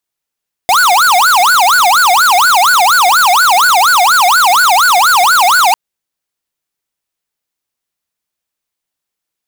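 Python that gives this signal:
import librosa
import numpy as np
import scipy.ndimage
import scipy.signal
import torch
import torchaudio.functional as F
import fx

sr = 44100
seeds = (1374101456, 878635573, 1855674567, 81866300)

y = fx.siren(sr, length_s=5.05, kind='wail', low_hz=702.0, high_hz=1490.0, per_s=4.2, wave='square', level_db=-8.0)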